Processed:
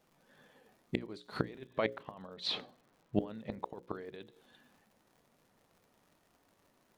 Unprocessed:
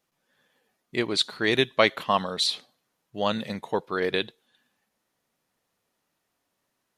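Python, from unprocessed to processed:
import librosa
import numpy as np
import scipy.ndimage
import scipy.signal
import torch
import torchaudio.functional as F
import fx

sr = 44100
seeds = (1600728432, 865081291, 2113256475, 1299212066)

y = fx.over_compress(x, sr, threshold_db=-27.0, ratio=-1.0)
y = fx.lowpass(y, sr, hz=3400.0, slope=12, at=(1.51, 3.68))
y = fx.gate_flip(y, sr, shuts_db=-20.0, range_db=-25)
y = fx.dmg_crackle(y, sr, seeds[0], per_s=130.0, level_db=-55.0)
y = fx.tilt_shelf(y, sr, db=5.5, hz=1300.0)
y = fx.hum_notches(y, sr, base_hz=60, count=9)
y = y * librosa.db_to_amplitude(2.0)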